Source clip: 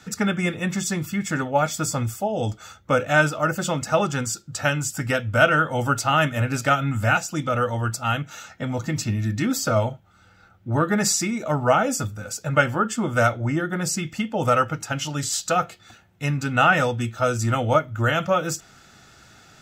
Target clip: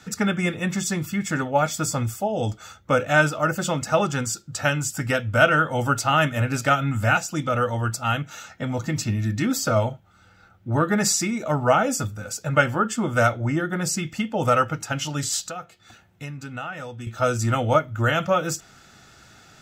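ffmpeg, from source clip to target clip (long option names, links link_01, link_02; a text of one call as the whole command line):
ffmpeg -i in.wav -filter_complex "[0:a]asettb=1/sr,asplit=3[link_01][link_02][link_03];[link_01]atrim=end=15.414[link_04];[link_02]atrim=start=15.41:end=17.07,asetpts=PTS-STARTPTS,afade=type=in:duration=0.004:curve=qsin,afade=type=out:start_time=1.656:duration=0.004:curve=qsin,acompressor=threshold=-36dB:ratio=3[link_05];[link_03]atrim=start=17.066[link_06];[link_04][link_05]acrossfade=duration=0.004:curve1=hsin:curve2=qsin[link_07];[link_07][link_06]acrossfade=duration=0.004:curve1=qsin:curve2=hsin" out.wav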